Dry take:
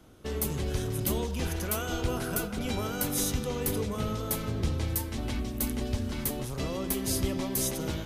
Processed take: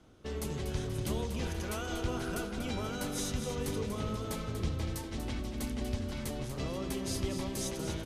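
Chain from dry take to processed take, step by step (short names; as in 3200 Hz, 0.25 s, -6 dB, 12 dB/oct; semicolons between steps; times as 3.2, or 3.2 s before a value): LPF 7700 Hz 12 dB/oct; on a send: feedback echo 0.24 s, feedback 47%, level -8.5 dB; on the sum: gain -4.5 dB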